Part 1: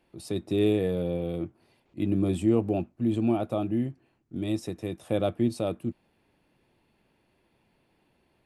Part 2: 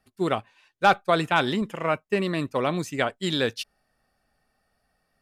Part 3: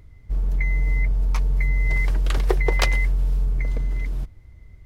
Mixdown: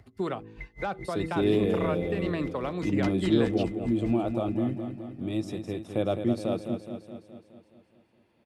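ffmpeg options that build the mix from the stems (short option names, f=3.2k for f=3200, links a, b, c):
-filter_complex "[0:a]adelay=850,volume=-1dB,asplit=2[a][b];[b]volume=-8dB[c];[1:a]tiltshelf=f=1.3k:g=5.5,bandreject=f=54.2:t=h:w=4,bandreject=f=108.4:t=h:w=4,bandreject=f=162.6:t=h:w=4,bandreject=f=216.8:t=h:w=4,bandreject=f=271:t=h:w=4,bandreject=f=325.2:t=h:w=4,bandreject=f=379.4:t=h:w=4,bandreject=f=433.6:t=h:w=4,bandreject=f=487.8:t=h:w=4,volume=3dB,asplit=2[d][e];[2:a]aeval=exprs='val(0)*pow(10,-36*(0.5-0.5*cos(2*PI*4.9*n/s))/20)':c=same,volume=-1dB,asplit=2[f][g];[g]volume=-11dB[h];[e]apad=whole_len=213995[i];[f][i]sidechaincompress=threshold=-32dB:ratio=8:attack=29:release=441[j];[d][j]amix=inputs=2:normalize=0,acrossover=split=220|1000|4000[k][l][m][n];[k]acompressor=threshold=-36dB:ratio=4[o];[l]acompressor=threshold=-27dB:ratio=4[p];[m]acompressor=threshold=-33dB:ratio=4[q];[n]acompressor=threshold=-49dB:ratio=4[r];[o][p][q][r]amix=inputs=4:normalize=0,alimiter=limit=-21dB:level=0:latency=1:release=416,volume=0dB[s];[c][h]amix=inputs=2:normalize=0,aecho=0:1:210|420|630|840|1050|1260|1470|1680|1890:1|0.58|0.336|0.195|0.113|0.0656|0.0381|0.0221|0.0128[t];[a][s][t]amix=inputs=3:normalize=0,highpass=70,highshelf=f=9.8k:g=-11"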